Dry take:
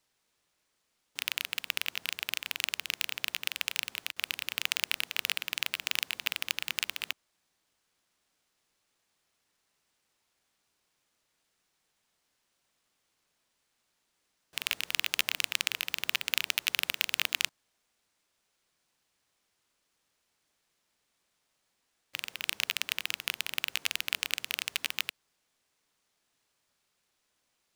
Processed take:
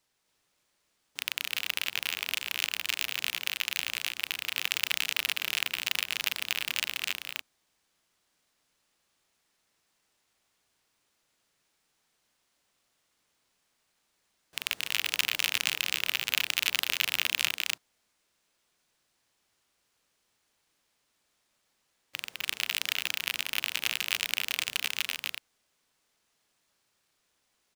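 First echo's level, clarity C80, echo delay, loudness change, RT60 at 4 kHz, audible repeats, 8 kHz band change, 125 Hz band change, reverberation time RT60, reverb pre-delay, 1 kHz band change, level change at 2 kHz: -3.5 dB, none, 0.254 s, +2.0 dB, none, 2, +2.5 dB, +2.5 dB, none, none, +2.5 dB, +2.5 dB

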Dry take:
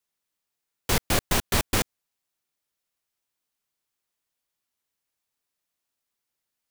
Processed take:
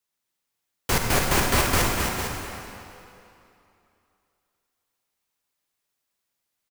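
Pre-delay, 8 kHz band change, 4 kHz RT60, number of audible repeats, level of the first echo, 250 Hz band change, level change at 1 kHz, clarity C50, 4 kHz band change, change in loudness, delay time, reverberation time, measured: 38 ms, +3.0 dB, 2.3 s, 2, -7.5 dB, +3.5 dB, +6.0 dB, -0.5 dB, +2.0 dB, +2.5 dB, 0.267 s, 2.8 s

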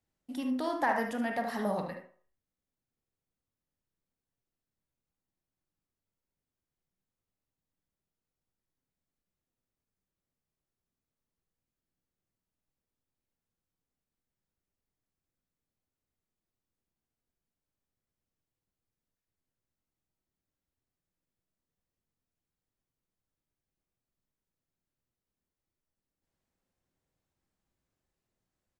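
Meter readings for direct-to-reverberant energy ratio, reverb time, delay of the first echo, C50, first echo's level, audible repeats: 3.0 dB, 0.50 s, 75 ms, 5.0 dB, -9.5 dB, 1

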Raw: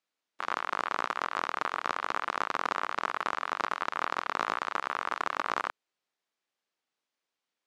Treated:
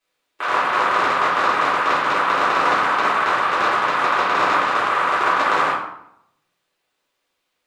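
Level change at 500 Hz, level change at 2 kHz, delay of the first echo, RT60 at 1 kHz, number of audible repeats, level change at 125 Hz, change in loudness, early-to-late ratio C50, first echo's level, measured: +15.5 dB, +14.5 dB, none, 0.75 s, none, +16.0 dB, +14.5 dB, 2.5 dB, none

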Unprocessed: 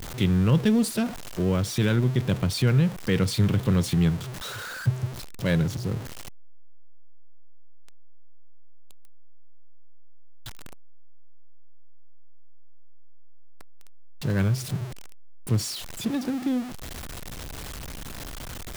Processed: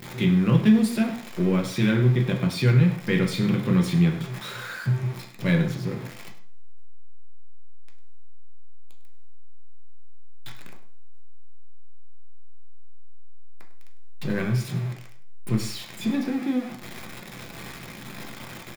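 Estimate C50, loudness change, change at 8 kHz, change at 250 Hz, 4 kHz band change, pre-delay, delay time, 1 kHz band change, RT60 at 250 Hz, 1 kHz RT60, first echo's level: 8.5 dB, +2.0 dB, -5.0 dB, +3.0 dB, -1.0 dB, 3 ms, 0.101 s, +1.0 dB, 0.55 s, 0.50 s, -15.0 dB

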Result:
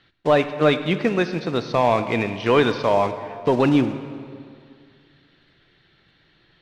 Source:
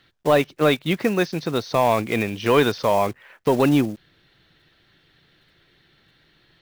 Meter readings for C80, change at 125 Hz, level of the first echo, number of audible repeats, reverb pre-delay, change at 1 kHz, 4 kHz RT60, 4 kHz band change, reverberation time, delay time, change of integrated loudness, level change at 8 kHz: 12.0 dB, +0.5 dB, none, none, 8 ms, +0.5 dB, 1.6 s, -1.0 dB, 2.2 s, none, +0.5 dB, n/a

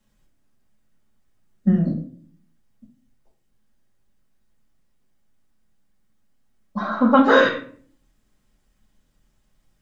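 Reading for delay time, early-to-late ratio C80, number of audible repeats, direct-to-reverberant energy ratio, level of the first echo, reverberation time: none, 12.5 dB, none, -5.0 dB, none, 0.50 s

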